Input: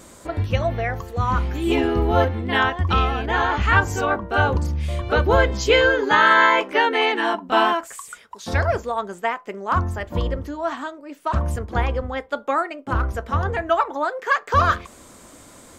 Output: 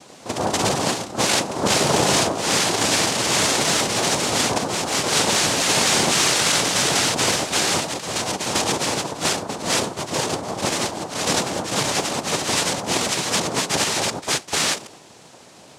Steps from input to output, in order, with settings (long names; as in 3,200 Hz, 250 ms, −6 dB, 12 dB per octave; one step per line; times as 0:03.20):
wrap-around overflow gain 14.5 dB
delay with pitch and tempo change per echo 84 ms, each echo +1 semitone, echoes 3
cochlear-implant simulation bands 2